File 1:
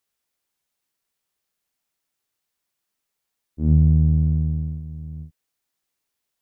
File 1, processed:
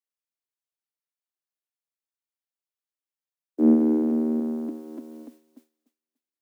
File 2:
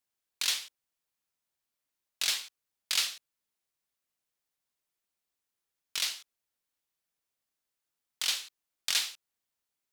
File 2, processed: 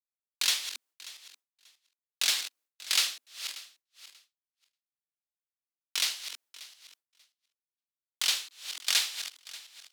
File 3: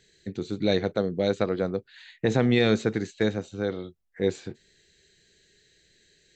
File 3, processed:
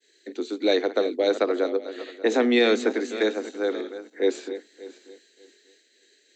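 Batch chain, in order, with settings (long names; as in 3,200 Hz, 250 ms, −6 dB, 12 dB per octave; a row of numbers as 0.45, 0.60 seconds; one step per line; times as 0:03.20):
feedback delay that plays each chunk backwards 293 ms, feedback 45%, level −12 dB
Butterworth high-pass 240 Hz 96 dB per octave
downward expander −59 dBFS
normalise the peak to −9 dBFS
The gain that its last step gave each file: +15.0, +2.5, +3.5 decibels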